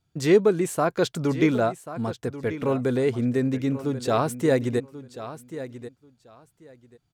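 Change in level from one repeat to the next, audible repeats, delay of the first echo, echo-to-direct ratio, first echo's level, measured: -15.0 dB, 2, 1.087 s, -13.5 dB, -13.5 dB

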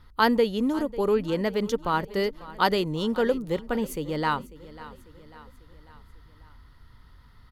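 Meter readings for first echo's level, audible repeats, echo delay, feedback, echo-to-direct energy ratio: -18.0 dB, 3, 0.545 s, 52%, -16.5 dB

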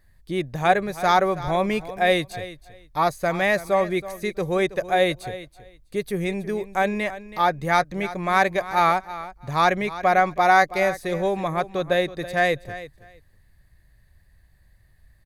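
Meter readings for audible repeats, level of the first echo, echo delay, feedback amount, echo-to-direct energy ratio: 2, -15.0 dB, 0.325 s, 17%, -15.0 dB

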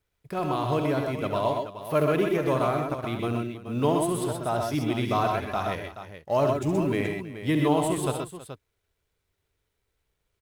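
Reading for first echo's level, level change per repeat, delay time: -8.5 dB, no steady repeat, 68 ms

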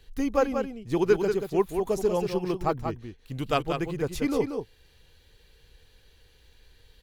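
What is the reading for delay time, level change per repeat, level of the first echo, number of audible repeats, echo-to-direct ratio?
0.185 s, no steady repeat, -6.5 dB, 1, -6.5 dB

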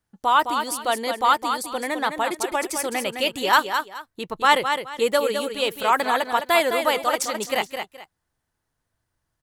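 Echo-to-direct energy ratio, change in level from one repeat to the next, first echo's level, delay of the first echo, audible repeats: -6.5 dB, -12.0 dB, -7.0 dB, 0.211 s, 2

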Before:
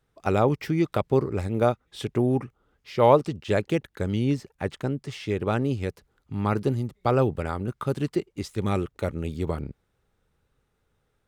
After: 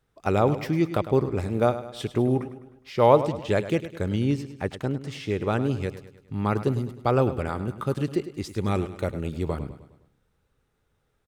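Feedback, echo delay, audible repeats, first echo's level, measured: 49%, 0.103 s, 4, -13.0 dB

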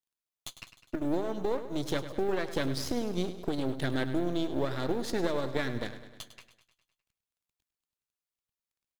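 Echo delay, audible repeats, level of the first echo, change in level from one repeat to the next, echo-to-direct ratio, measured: 0.102 s, 5, -12.5 dB, -4.5 dB, -10.5 dB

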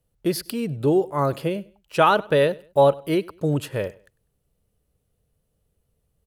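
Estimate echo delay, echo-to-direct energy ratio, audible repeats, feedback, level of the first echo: 99 ms, -22.5 dB, 2, 30%, -23.0 dB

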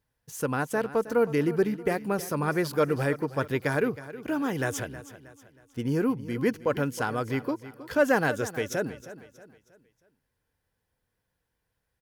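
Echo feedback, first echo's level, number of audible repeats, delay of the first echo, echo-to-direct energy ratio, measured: 40%, -15.0 dB, 3, 0.317 s, -14.0 dB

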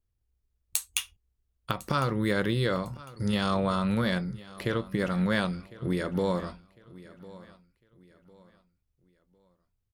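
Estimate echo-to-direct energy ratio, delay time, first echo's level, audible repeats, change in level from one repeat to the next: -19.0 dB, 1.053 s, -19.5 dB, 2, -9.5 dB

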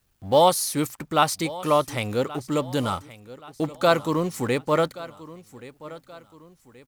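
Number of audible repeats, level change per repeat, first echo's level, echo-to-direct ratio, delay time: 3, -7.5 dB, -18.0 dB, -17.0 dB, 1.127 s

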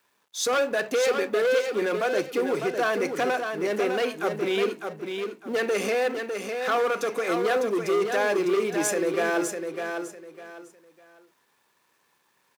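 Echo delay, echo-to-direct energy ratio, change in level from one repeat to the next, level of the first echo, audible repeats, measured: 0.603 s, -5.5 dB, -11.5 dB, -6.0 dB, 3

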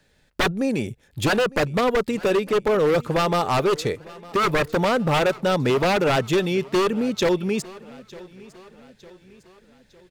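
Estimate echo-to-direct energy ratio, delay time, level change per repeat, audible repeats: -20.0 dB, 0.905 s, -6.0 dB, 3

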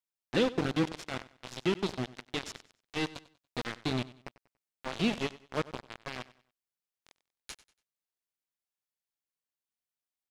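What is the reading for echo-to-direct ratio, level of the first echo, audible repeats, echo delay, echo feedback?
-18.0 dB, -18.5 dB, 2, 95 ms, 33%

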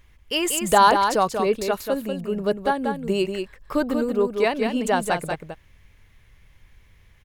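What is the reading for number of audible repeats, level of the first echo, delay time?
1, -6.0 dB, 0.188 s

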